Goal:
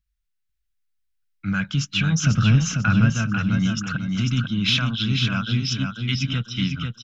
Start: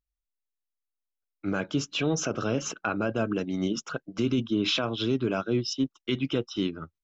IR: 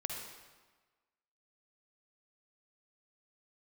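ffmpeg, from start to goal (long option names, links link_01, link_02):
-filter_complex "[0:a]asettb=1/sr,asplit=3[link_01][link_02][link_03];[link_01]atrim=end=2.244[link_04];[link_02]atrim=start=2.24:end=3.1,asetpts=PTS-STARTPTS,afade=type=in:duration=0.004:curve=qsin,afade=type=out:start_time=0.856:duration=0.004:curve=qsin,lowshelf=frequency=430:gain=9.5[link_05];[link_03]atrim=start=3.096[link_06];[link_04][link_05]acrossfade=duration=0.004:curve1=hsin:curve2=qsin[link_07];[link_07][link_06]acrossfade=duration=0.004:curve1=qsin:curve2=hsin,acontrast=71,firequalizer=gain_entry='entry(180,0);entry(350,-29);entry(1500,-3);entry(7500,-8)':delay=0.05:min_phase=1,aecho=1:1:494|988|1482|1976:0.562|0.169|0.0506|0.0152,acontrast=58,volume=-1.5dB"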